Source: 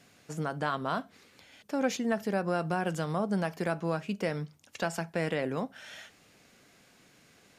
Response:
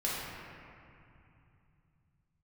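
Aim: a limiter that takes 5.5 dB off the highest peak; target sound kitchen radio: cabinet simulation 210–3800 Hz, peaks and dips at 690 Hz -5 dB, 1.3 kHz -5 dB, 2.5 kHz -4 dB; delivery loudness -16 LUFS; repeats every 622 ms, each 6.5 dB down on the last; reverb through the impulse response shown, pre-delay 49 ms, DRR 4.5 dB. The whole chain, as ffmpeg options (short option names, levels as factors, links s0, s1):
-filter_complex "[0:a]alimiter=limit=0.0794:level=0:latency=1,aecho=1:1:622|1244|1866|2488|3110|3732:0.473|0.222|0.105|0.0491|0.0231|0.0109,asplit=2[s0][s1];[1:a]atrim=start_sample=2205,adelay=49[s2];[s1][s2]afir=irnorm=-1:irlink=0,volume=0.266[s3];[s0][s3]amix=inputs=2:normalize=0,highpass=210,equalizer=f=690:t=q:w=4:g=-5,equalizer=f=1300:t=q:w=4:g=-5,equalizer=f=2500:t=q:w=4:g=-4,lowpass=f=3800:w=0.5412,lowpass=f=3800:w=1.3066,volume=8.91"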